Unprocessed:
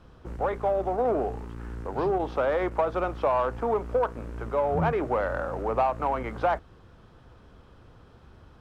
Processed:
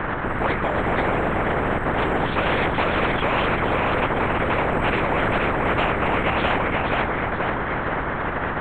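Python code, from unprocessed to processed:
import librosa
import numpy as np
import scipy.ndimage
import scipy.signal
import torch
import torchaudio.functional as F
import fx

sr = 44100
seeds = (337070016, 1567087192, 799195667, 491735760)

p1 = fx.tilt_eq(x, sr, slope=-3.0)
p2 = fx.dmg_noise_band(p1, sr, seeds[0], low_hz=230.0, high_hz=1500.0, level_db=-48.0)
p3 = fx.air_absorb(p2, sr, metres=160.0)
p4 = p3 + fx.echo_feedback(p3, sr, ms=479, feedback_pct=42, wet_db=-3.5, dry=0)
p5 = fx.lpc_vocoder(p4, sr, seeds[1], excitation='whisper', order=10)
y = fx.spectral_comp(p5, sr, ratio=4.0)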